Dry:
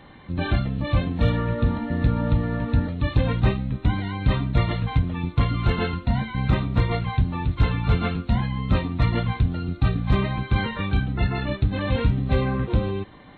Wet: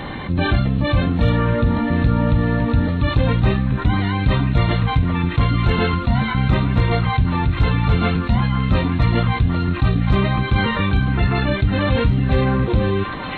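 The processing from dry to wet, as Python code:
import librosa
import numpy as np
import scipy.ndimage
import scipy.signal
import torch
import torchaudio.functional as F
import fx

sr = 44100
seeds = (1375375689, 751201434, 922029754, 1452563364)

y = fx.echo_stepped(x, sr, ms=501, hz=1300.0, octaves=0.7, feedback_pct=70, wet_db=-8.5)
y = fx.env_flatten(y, sr, amount_pct=50)
y = F.gain(torch.from_numpy(y), 1.5).numpy()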